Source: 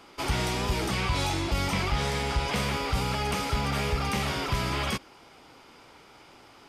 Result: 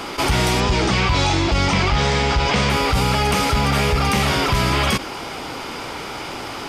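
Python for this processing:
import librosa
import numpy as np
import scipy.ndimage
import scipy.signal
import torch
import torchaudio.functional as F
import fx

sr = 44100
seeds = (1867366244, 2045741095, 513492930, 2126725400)

y = fx.lowpass(x, sr, hz=7200.0, slope=24, at=(0.6, 2.7))
y = np.clip(y, -10.0 ** (-19.5 / 20.0), 10.0 ** (-19.5 / 20.0))
y = fx.env_flatten(y, sr, amount_pct=50)
y = y * 10.0 ** (7.5 / 20.0)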